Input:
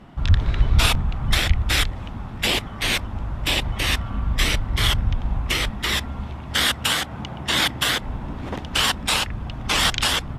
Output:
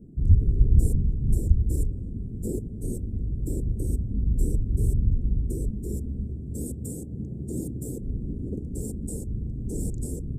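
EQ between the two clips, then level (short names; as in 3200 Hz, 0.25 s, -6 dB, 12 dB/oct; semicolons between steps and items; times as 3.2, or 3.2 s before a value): Chebyshev band-stop 430–7900 Hz, order 4; bell 13000 Hz -14 dB 1.5 oct; 0.0 dB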